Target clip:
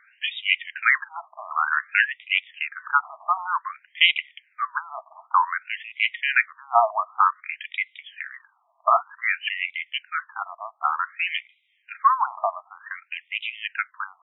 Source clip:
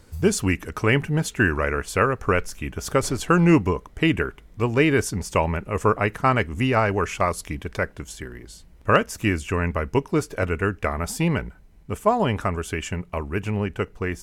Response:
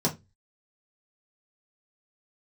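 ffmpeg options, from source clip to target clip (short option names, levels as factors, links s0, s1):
-af "highpass=f=220:w=0.5412,highpass=f=220:w=1.3066,equalizer=f=220:t=q:w=4:g=9,equalizer=f=760:t=q:w=4:g=-5,equalizer=f=3200:t=q:w=4:g=6,lowpass=f=3900:w=0.5412,lowpass=f=3900:w=1.3066,asetrate=46722,aresample=44100,atempo=0.943874,afftfilt=real='re*between(b*sr/1024,870*pow(2800/870,0.5+0.5*sin(2*PI*0.54*pts/sr))/1.41,870*pow(2800/870,0.5+0.5*sin(2*PI*0.54*pts/sr))*1.41)':imag='im*between(b*sr/1024,870*pow(2800/870,0.5+0.5*sin(2*PI*0.54*pts/sr))/1.41,870*pow(2800/870,0.5+0.5*sin(2*PI*0.54*pts/sr))*1.41)':win_size=1024:overlap=0.75,volume=2.51"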